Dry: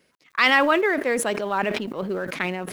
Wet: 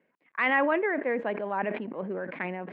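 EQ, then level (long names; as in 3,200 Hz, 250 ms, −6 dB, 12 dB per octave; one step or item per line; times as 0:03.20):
loudspeaker in its box 130–2,100 Hz, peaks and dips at 130 Hz −10 dB, 380 Hz −3 dB, 1,300 Hz −8 dB
−4.0 dB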